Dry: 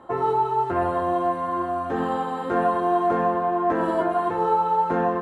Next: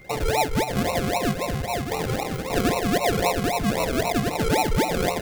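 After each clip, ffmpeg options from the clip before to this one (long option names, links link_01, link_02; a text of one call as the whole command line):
ffmpeg -i in.wav -af "afftfilt=real='re*(1-between(b*sr/4096,180,430))':imag='im*(1-between(b*sr/4096,180,430))':win_size=4096:overlap=0.75,acrusher=samples=38:mix=1:aa=0.000001:lfo=1:lforange=22.8:lforate=3.8,aeval=exprs='val(0)+0.00398*sin(2*PI*2100*n/s)':channel_layout=same" out.wav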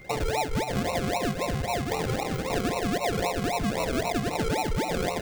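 ffmpeg -i in.wav -af "equalizer=frequency=12000:width=5:gain=-13.5,acompressor=threshold=-24dB:ratio=6" out.wav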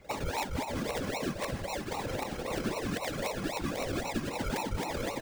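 ffmpeg -i in.wav -filter_complex "[0:a]aecho=1:1:3.6:0.81,afftfilt=real='hypot(re,im)*cos(2*PI*random(0))':imag='hypot(re,im)*sin(2*PI*random(1))':win_size=512:overlap=0.75,acrossover=split=420|910[link_01][link_02][link_03];[link_02]aeval=exprs='(mod(26.6*val(0)+1,2)-1)/26.6':channel_layout=same[link_04];[link_01][link_04][link_03]amix=inputs=3:normalize=0,volume=-2dB" out.wav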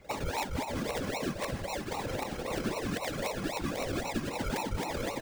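ffmpeg -i in.wav -af anull out.wav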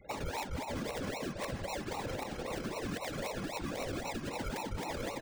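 ffmpeg -i in.wav -af "afftfilt=real='re*gte(hypot(re,im),0.00178)':imag='im*gte(hypot(re,im),0.00178)':win_size=1024:overlap=0.75,alimiter=level_in=2.5dB:limit=-24dB:level=0:latency=1:release=126,volume=-2.5dB,volume=-1.5dB" out.wav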